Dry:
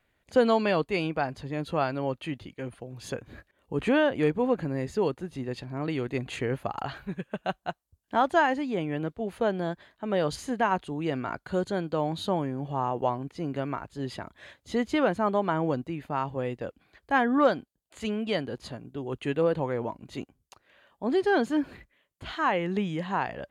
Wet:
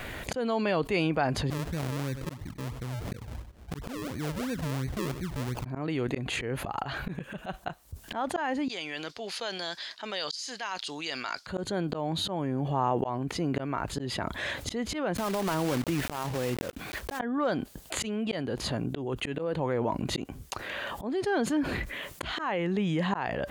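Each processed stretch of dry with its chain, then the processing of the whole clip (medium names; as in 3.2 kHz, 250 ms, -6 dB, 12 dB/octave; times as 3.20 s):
1.50–5.65 s: amplifier tone stack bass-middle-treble 10-0-1 + decimation with a swept rate 41× 2.9 Hz + delay 98 ms -23.5 dB
8.68–11.47 s: band-pass filter 5 kHz, Q 4.1 + tape noise reduction on one side only decoder only
15.15–17.20 s: block-companded coder 3-bit + compression, threshold -31 dBFS
whole clip: slow attack 791 ms; level flattener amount 70%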